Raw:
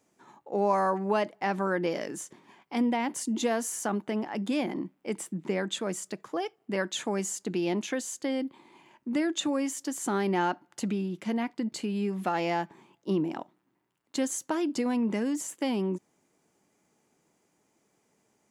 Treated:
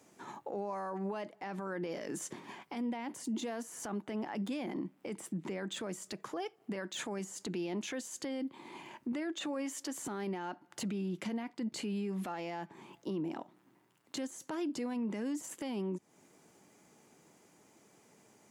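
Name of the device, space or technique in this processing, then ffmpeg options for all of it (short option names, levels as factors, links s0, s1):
podcast mastering chain: -filter_complex "[0:a]asettb=1/sr,asplit=3[s0][s1][s2];[s0]atrim=end=9.124[s3];[s1]atrim=start=9.12:end=9.98,asetpts=PTS-STARTPTS,afade=t=in:d=0.004:c=qsin,afade=t=out:st=0.856:d=0.004:c=qsin,bass=f=250:g=-8,treble=f=4000:g=-5[s4];[s2]atrim=start=9.976[s5];[s3][s4]acrossfade=d=0.004:c1=hsin:c2=qsin[s6];[s6][s5]acrossfade=d=0.004:c1=qsin:c2=hsin,highpass=f=70:w=0.5412,highpass=f=70:w=1.3066,deesser=0.9,acompressor=threshold=0.00794:ratio=4,alimiter=level_in=4.73:limit=0.0631:level=0:latency=1:release=21,volume=0.211,volume=2.51" -ar 48000 -c:a libmp3lame -b:a 96k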